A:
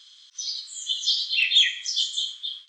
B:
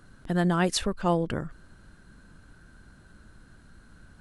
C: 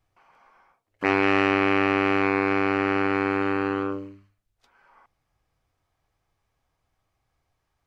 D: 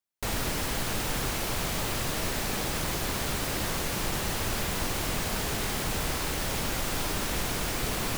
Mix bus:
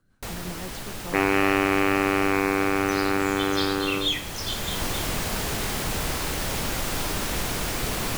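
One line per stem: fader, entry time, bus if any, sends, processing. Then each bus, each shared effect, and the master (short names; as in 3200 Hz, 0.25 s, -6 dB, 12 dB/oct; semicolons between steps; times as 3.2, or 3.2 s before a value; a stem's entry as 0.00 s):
-8.0 dB, 2.50 s, no send, dry
-12.0 dB, 0.00 s, no send, rotary speaker horn 5.5 Hz
-0.5 dB, 0.10 s, no send, dry
+2.5 dB, 0.00 s, no send, auto duck -8 dB, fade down 0.35 s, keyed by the second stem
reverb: off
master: dry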